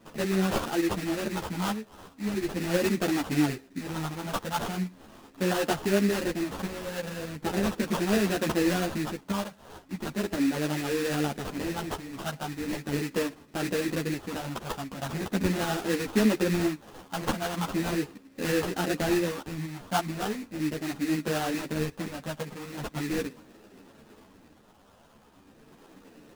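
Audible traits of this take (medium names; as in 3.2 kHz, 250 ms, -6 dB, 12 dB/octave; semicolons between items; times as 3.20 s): phasing stages 4, 0.39 Hz, lowest notch 350–2500 Hz; aliases and images of a low sample rate 2.2 kHz, jitter 20%; tremolo saw up 8.7 Hz, depth 35%; a shimmering, thickened sound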